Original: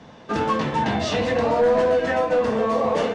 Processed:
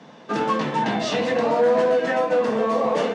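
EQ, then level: high-pass 150 Hz 24 dB/octave; 0.0 dB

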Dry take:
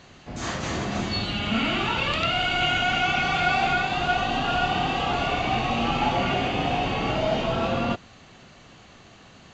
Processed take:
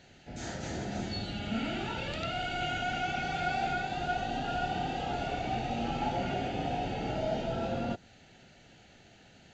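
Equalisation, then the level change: peaking EQ 1.1 kHz +14.5 dB 0.24 oct; dynamic bell 2.6 kHz, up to -7 dB, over -38 dBFS, Q 1.1; Butterworth band-stop 1.1 kHz, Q 2.1; -7.5 dB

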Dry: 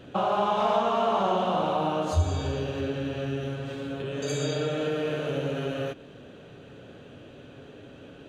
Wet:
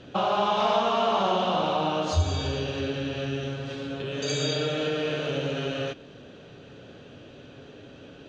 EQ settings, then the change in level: dynamic bell 3.1 kHz, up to +4 dB, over -45 dBFS, Q 0.86; resonant low-pass 5.5 kHz, resonance Q 2; 0.0 dB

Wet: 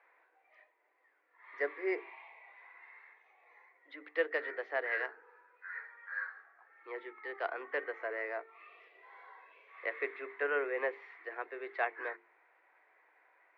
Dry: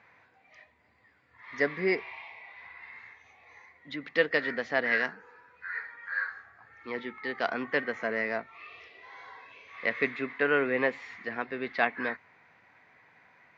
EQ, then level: steep high-pass 320 Hz 72 dB/octave; low-pass 2.1 kHz 12 dB/octave; hum notches 50/100/150/200/250/300/350/400/450 Hz; -6.0 dB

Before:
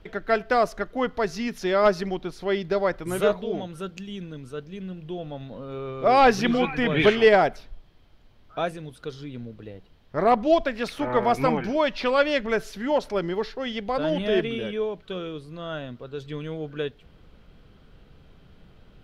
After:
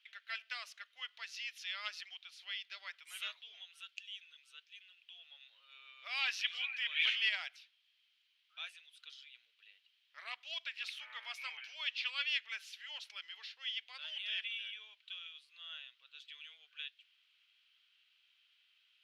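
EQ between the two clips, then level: ladder high-pass 2.4 kHz, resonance 50%; tilt EQ -2.5 dB/octave; +4.0 dB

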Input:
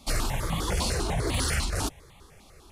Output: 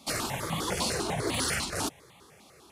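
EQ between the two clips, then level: high-pass 150 Hz 12 dB/octave; 0.0 dB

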